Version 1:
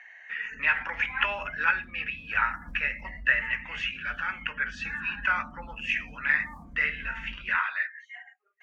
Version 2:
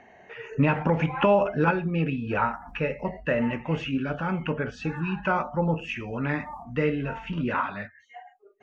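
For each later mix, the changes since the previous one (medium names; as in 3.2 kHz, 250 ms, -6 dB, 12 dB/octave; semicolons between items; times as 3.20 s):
speech: remove resonant high-pass 1.8 kHz, resonance Q 3.5; background -5.5 dB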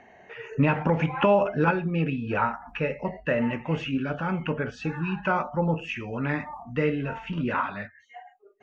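background -6.0 dB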